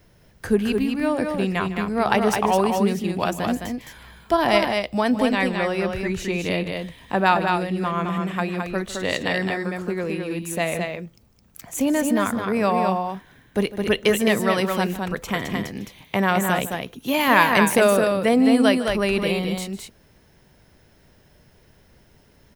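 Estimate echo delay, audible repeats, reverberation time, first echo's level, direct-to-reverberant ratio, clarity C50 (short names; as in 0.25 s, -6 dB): 0.153 s, 2, none, -16.0 dB, none, none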